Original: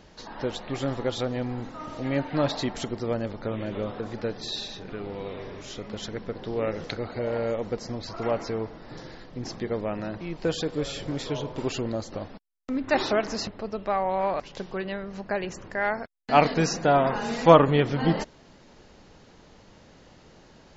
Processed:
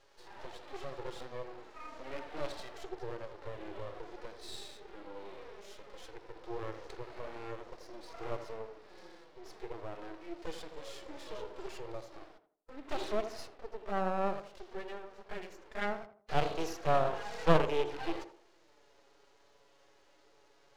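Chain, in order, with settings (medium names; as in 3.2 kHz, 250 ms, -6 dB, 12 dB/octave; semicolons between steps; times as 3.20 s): rattle on loud lows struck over -23 dBFS, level -22 dBFS; elliptic high-pass 330 Hz; touch-sensitive flanger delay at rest 7.8 ms, full sweep at -21.5 dBFS; half-wave rectifier; harmonic-percussive split percussive -11 dB; on a send: tape echo 82 ms, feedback 40%, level -8.5 dB, low-pass 1.2 kHz; on the sum: loudspeaker Doppler distortion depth 0.47 ms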